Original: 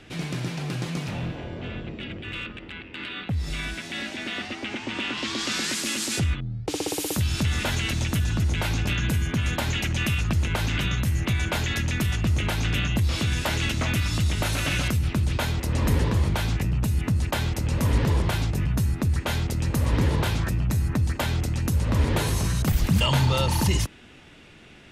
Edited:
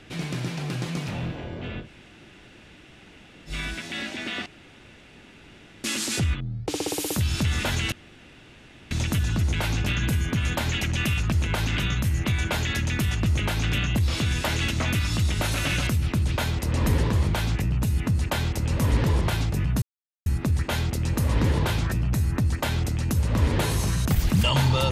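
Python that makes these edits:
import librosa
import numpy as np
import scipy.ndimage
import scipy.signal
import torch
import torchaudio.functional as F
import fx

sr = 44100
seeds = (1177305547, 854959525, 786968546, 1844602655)

y = fx.edit(x, sr, fx.room_tone_fill(start_s=1.84, length_s=1.66, crossfade_s=0.1),
    fx.room_tone_fill(start_s=4.46, length_s=1.38),
    fx.insert_room_tone(at_s=7.92, length_s=0.99),
    fx.insert_silence(at_s=18.83, length_s=0.44), tone=tone)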